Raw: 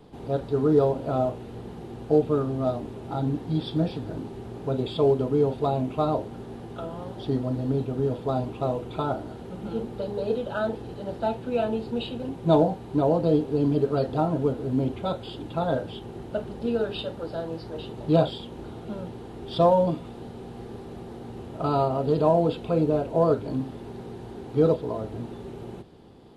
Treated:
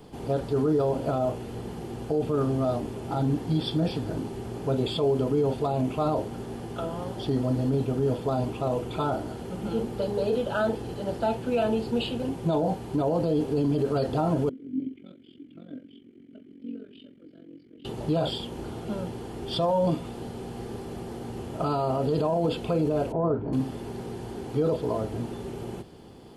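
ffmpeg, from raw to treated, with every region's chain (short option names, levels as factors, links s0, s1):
-filter_complex "[0:a]asettb=1/sr,asplit=3[s0][s1][s2];[s0]atrim=end=14.494[s3];[s1]atrim=start=14.49:end=17.85,asetpts=PTS-STARTPTS,afade=t=in:d=0.004:c=qsin,afade=t=out:st=3.356:d=0.004:c=qsin,equalizer=f=4100:t=o:w=1.9:g=-8,tremolo=f=45:d=0.889,asplit=3[s4][s5][s6];[s4]bandpass=f=270:t=q:w=8,volume=1[s7];[s5]bandpass=f=2290:t=q:w=8,volume=0.501[s8];[s6]bandpass=f=3010:t=q:w=8,volume=0.355[s9];[s7][s8][s9]amix=inputs=3:normalize=0[s10];[s2]atrim=start=17.846[s11];[s3][s10]acrossfade=d=0.004:c1=hsin:c2=qsin[s12];[s12][s11]acrossfade=d=0.004:c1=qsin:c2=hsin,asettb=1/sr,asplit=3[s13][s14][s15];[s13]atrim=end=23.124[s16];[s14]atrim=start=23.12:end=23.53,asetpts=PTS-STARTPTS,afade=t=in:d=0.004:c=qsin,afade=t=out:st=0.406:d=0.004:c=qsin,lowpass=1100,equalizer=f=560:t=o:w=0.37:g=-7.5[s17];[s15]atrim=start=23.526[s18];[s16][s17]acrossfade=d=0.004:c1=hsin:c2=qsin[s19];[s19][s18]acrossfade=d=0.004:c1=qsin:c2=hsin,highshelf=f=4100:g=8.5,alimiter=limit=0.106:level=0:latency=1:release=24,bandreject=f=3800:w=9.5,volume=1.33"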